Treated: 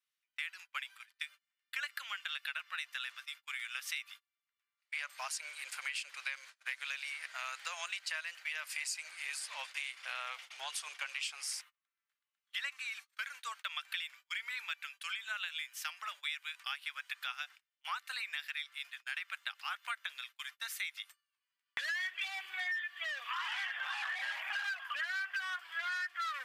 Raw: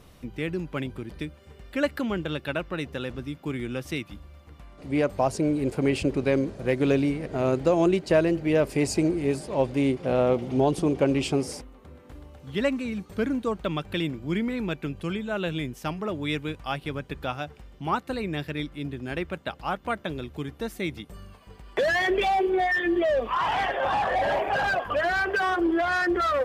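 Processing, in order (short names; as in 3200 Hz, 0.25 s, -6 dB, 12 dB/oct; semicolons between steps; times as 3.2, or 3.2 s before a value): inverse Chebyshev high-pass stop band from 330 Hz, stop band 70 dB; gate -52 dBFS, range -33 dB; compressor 6:1, threshold -40 dBFS, peak gain reduction 15.5 dB; gain +4 dB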